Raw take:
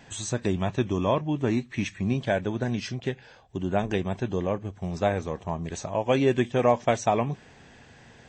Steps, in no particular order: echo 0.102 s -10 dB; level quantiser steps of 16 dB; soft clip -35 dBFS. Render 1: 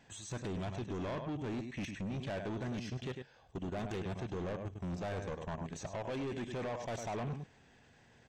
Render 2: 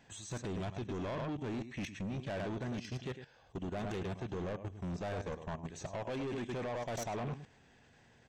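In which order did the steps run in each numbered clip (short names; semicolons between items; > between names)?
level quantiser > echo > soft clip; echo > level quantiser > soft clip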